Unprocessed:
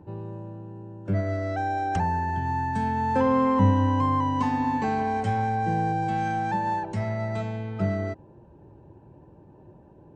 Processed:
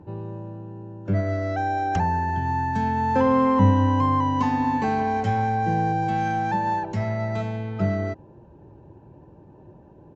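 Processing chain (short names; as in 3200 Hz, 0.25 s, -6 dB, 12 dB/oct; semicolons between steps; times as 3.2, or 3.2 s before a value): downsampling 16000 Hz; gain +2.5 dB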